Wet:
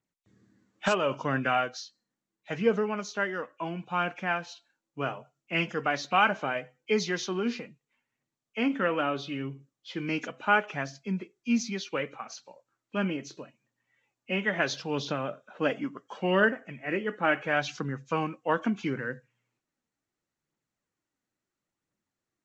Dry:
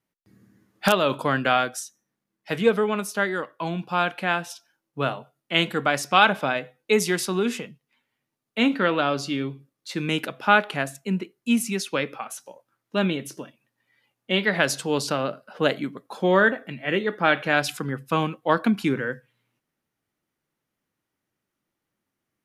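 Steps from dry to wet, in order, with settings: knee-point frequency compression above 2.1 kHz 1.5:1; 15.76–16.44 s: peaking EQ 830 Hz -> 3.5 kHz +10 dB 0.5 oct; phaser 0.73 Hz, delay 4.3 ms, feedback 30%; trim -6 dB

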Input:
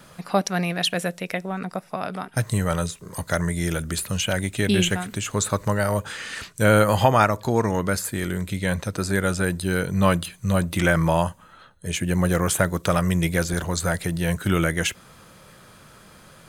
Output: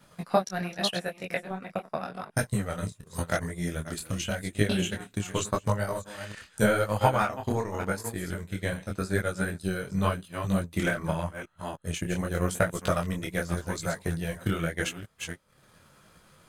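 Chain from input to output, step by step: chunks repeated in reverse 301 ms, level -8 dB; transient shaper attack +10 dB, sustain -12 dB; detune thickener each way 30 cents; trim -6.5 dB

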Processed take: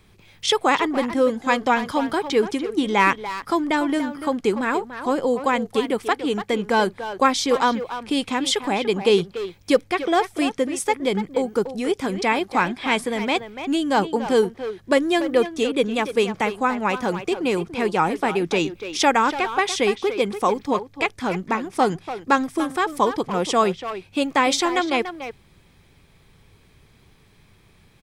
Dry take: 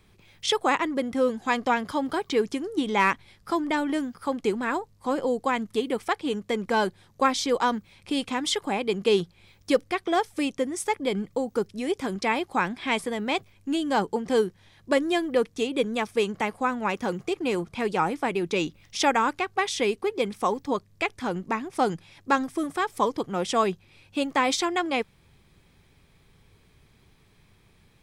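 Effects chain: speakerphone echo 290 ms, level -9 dB; trim +4.5 dB

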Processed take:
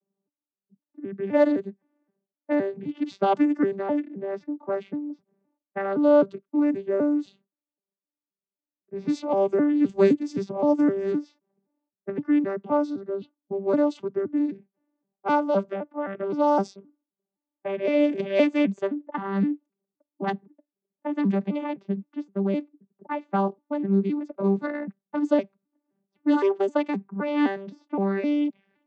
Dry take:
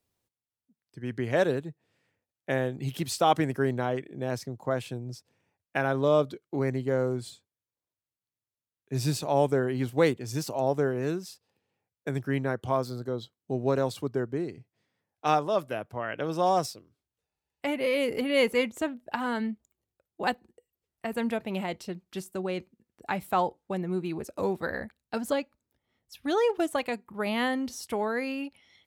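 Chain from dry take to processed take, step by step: vocoder on a broken chord bare fifth, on G3, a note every 259 ms; level-controlled noise filter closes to 770 Hz, open at -24.5 dBFS; 9.89–11.13 s: tone controls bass +7 dB, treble +8 dB; trim +5 dB

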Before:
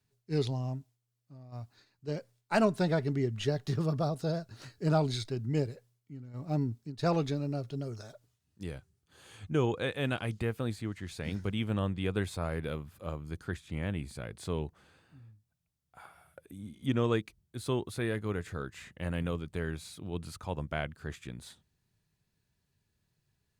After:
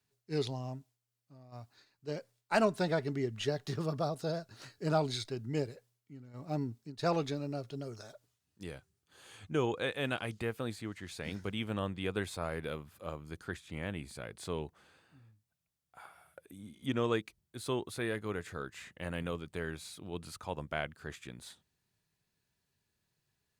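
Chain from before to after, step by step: bass shelf 210 Hz -9.5 dB

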